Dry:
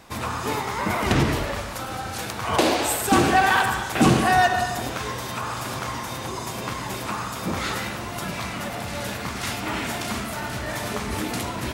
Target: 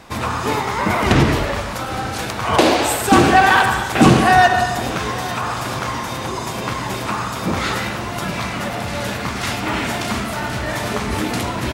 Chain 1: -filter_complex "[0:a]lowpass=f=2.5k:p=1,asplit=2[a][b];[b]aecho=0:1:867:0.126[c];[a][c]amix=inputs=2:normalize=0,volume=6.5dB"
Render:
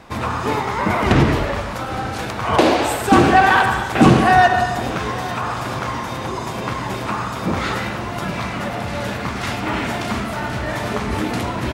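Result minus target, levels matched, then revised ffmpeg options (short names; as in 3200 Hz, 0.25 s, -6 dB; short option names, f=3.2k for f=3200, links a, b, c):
8000 Hz band -5.5 dB
-filter_complex "[0:a]lowpass=f=6.4k:p=1,asplit=2[a][b];[b]aecho=0:1:867:0.126[c];[a][c]amix=inputs=2:normalize=0,volume=6.5dB"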